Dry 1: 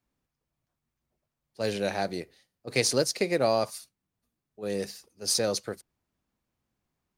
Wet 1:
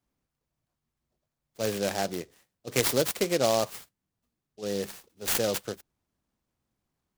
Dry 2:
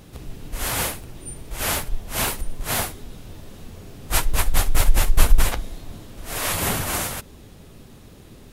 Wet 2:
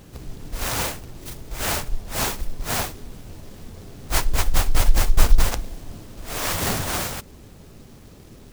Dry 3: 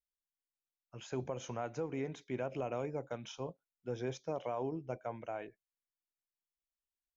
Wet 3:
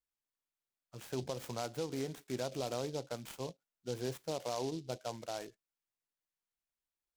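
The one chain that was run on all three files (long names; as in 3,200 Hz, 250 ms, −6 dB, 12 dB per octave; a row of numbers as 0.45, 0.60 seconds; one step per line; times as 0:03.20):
short delay modulated by noise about 4,400 Hz, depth 0.074 ms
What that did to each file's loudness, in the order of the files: 0.0, −0.5, +0.5 LU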